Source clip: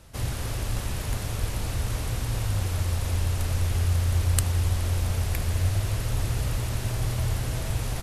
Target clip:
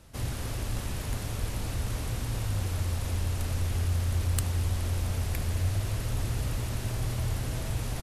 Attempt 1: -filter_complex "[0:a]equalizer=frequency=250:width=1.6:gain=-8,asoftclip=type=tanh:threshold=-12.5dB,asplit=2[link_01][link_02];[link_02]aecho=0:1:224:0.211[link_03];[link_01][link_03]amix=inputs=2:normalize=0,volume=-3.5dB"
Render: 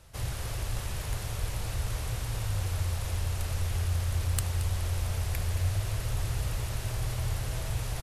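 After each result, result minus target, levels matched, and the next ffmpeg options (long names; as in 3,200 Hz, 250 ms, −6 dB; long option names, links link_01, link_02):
echo-to-direct +8.5 dB; 250 Hz band −5.5 dB
-filter_complex "[0:a]equalizer=frequency=250:width=1.6:gain=-8,asoftclip=type=tanh:threshold=-12.5dB,asplit=2[link_01][link_02];[link_02]aecho=0:1:224:0.0794[link_03];[link_01][link_03]amix=inputs=2:normalize=0,volume=-3.5dB"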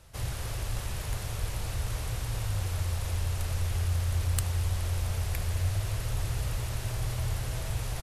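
250 Hz band −5.5 dB
-filter_complex "[0:a]equalizer=frequency=250:width=1.6:gain=3.5,asoftclip=type=tanh:threshold=-12.5dB,asplit=2[link_01][link_02];[link_02]aecho=0:1:224:0.0794[link_03];[link_01][link_03]amix=inputs=2:normalize=0,volume=-3.5dB"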